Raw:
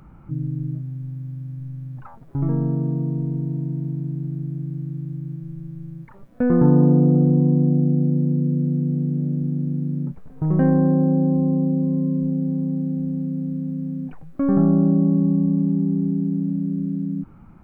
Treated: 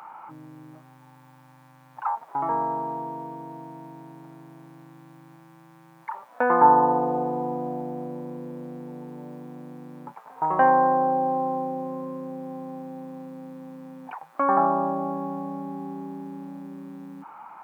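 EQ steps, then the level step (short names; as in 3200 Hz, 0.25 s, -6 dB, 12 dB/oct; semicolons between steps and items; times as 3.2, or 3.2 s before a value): resonant high-pass 890 Hz, resonance Q 4.9; +7.5 dB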